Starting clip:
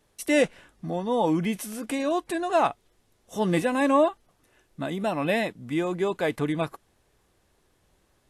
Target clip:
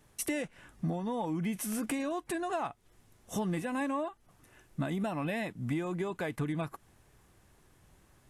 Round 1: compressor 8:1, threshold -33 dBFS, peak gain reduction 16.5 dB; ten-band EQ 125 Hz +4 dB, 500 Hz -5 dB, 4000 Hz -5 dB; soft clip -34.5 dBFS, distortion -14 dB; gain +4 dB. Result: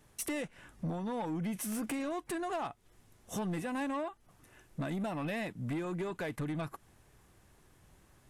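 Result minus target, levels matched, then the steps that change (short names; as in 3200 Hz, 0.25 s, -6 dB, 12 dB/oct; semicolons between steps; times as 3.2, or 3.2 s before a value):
soft clip: distortion +14 dB
change: soft clip -24.5 dBFS, distortion -28 dB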